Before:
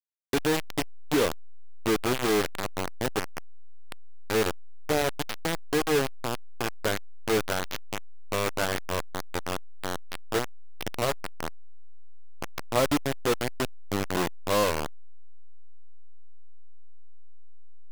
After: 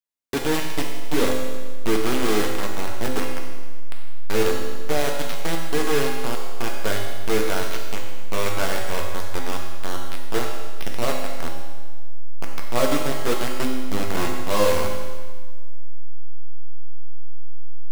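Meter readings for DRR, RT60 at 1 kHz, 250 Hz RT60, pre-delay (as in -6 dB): -0.5 dB, 1.5 s, 1.5 s, 4 ms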